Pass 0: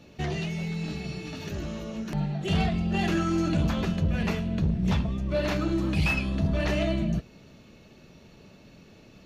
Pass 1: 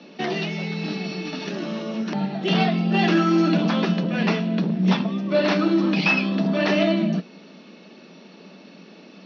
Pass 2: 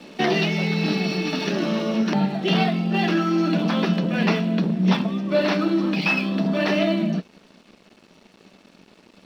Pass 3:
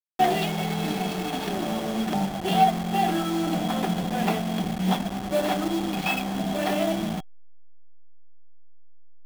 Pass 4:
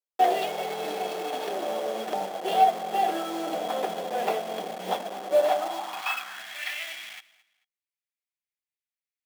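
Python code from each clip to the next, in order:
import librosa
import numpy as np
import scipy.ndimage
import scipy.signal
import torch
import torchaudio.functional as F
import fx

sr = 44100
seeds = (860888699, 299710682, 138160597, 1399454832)

y1 = scipy.signal.sosfilt(scipy.signal.cheby1(5, 1.0, [180.0, 5600.0], 'bandpass', fs=sr, output='sos'), x)
y1 = y1 * 10.0 ** (8.5 / 20.0)
y2 = fx.rider(y1, sr, range_db=5, speed_s=0.5)
y2 = np.sign(y2) * np.maximum(np.abs(y2) - 10.0 ** (-48.5 / 20.0), 0.0)
y2 = y2 * 10.0 ** (1.0 / 20.0)
y3 = fx.delta_hold(y2, sr, step_db=-23.5)
y3 = fx.small_body(y3, sr, hz=(750.0, 3300.0), ring_ms=55, db=16)
y3 = y3 * 10.0 ** (-5.5 / 20.0)
y4 = fx.filter_sweep_highpass(y3, sr, from_hz=500.0, to_hz=2100.0, start_s=5.34, end_s=6.63, q=3.2)
y4 = fx.echo_feedback(y4, sr, ms=220, feedback_pct=28, wet_db=-20.5)
y4 = y4 * 10.0 ** (-4.5 / 20.0)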